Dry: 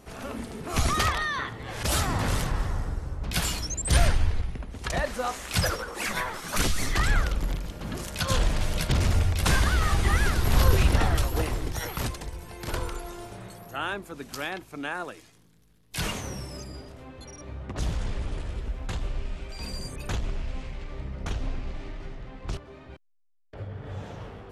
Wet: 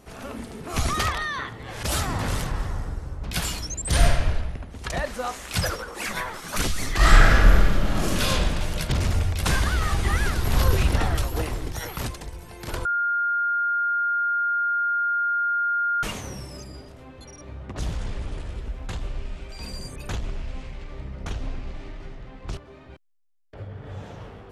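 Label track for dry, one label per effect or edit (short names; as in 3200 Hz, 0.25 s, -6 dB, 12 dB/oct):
3.890000	4.330000	reverb throw, RT60 1.1 s, DRR 1 dB
6.960000	8.210000	reverb throw, RT60 1.9 s, DRR -10 dB
12.850000	16.030000	bleep 1410 Hz -20.5 dBFS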